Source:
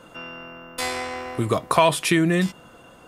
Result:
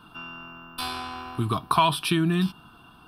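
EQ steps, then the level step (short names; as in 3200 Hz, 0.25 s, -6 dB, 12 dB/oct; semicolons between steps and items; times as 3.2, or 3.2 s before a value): fixed phaser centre 2000 Hz, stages 6; 0.0 dB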